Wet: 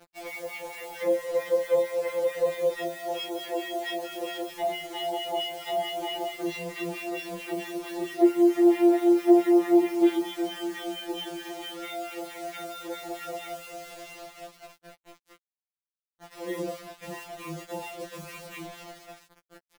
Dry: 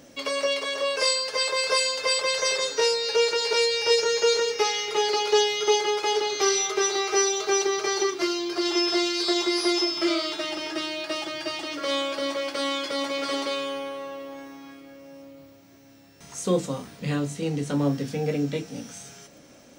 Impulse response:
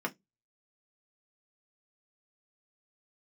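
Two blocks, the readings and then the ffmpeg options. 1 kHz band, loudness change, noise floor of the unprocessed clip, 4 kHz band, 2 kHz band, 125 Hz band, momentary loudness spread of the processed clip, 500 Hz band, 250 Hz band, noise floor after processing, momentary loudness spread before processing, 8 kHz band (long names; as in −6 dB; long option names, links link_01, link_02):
−5.0 dB, −3.0 dB, −51 dBFS, −12.5 dB, −9.5 dB, below −10 dB, 20 LU, −2.0 dB, +3.5 dB, below −85 dBFS, 11 LU, −17.5 dB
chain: -filter_complex "[0:a]asplit=2[link_01][link_02];[link_02]acrusher=samples=29:mix=1:aa=0.000001,volume=-5dB[link_03];[link_01][link_03]amix=inputs=2:normalize=0,highpass=430[link_04];[1:a]atrim=start_sample=2205[link_05];[link_04][link_05]afir=irnorm=-1:irlink=0,acrossover=split=1100[link_06][link_07];[link_06]aeval=exprs='val(0)*(1-1/2+1/2*cos(2*PI*4.5*n/s))':channel_layout=same[link_08];[link_07]aeval=exprs='val(0)*(1-1/2-1/2*cos(2*PI*4.5*n/s))':channel_layout=same[link_09];[link_08][link_09]amix=inputs=2:normalize=0,asplit=4[link_10][link_11][link_12][link_13];[link_11]adelay=386,afreqshift=-54,volume=-23.5dB[link_14];[link_12]adelay=772,afreqshift=-108,volume=-29dB[link_15];[link_13]adelay=1158,afreqshift=-162,volume=-34.5dB[link_16];[link_10][link_14][link_15][link_16]amix=inputs=4:normalize=0,acrossover=split=820|2000[link_17][link_18][link_19];[link_18]acompressor=threshold=-49dB:ratio=4[link_20];[link_17][link_20][link_19]amix=inputs=3:normalize=0,lowpass=frequency=3500:width=0.5412,lowpass=frequency=3500:width=1.3066,acrusher=bits=6:mix=0:aa=0.000001,afftfilt=real='re*2.83*eq(mod(b,8),0)':imag='im*2.83*eq(mod(b,8),0)':win_size=2048:overlap=0.75"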